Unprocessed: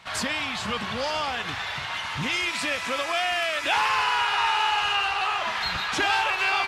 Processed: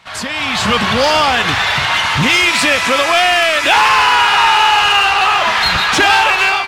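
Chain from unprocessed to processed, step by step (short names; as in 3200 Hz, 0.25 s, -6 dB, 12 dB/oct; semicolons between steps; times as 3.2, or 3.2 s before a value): AGC gain up to 15 dB; in parallel at -3.5 dB: hard clip -15 dBFS, distortion -8 dB; on the sum: gain -1 dB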